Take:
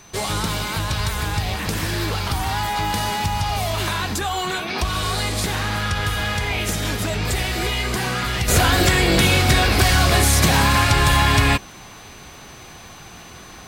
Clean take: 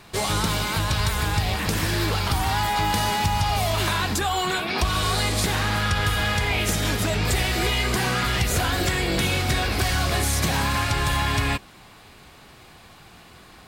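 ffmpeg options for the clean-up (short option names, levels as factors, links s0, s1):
-af "adeclick=t=4,bandreject=f=6100:w=30,asetnsamples=n=441:p=0,asendcmd='8.48 volume volume -7dB',volume=1"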